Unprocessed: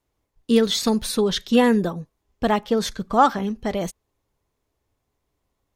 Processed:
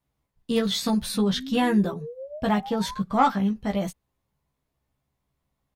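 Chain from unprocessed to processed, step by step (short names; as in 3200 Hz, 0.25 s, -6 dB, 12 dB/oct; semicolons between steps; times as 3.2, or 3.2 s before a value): one diode to ground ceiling -4 dBFS; fifteen-band EQ 160 Hz +8 dB, 400 Hz -6 dB, 6300 Hz -4 dB; painted sound rise, 1.14–3.01, 200–1100 Hz -35 dBFS; doubler 15 ms -3 dB; gain -4.5 dB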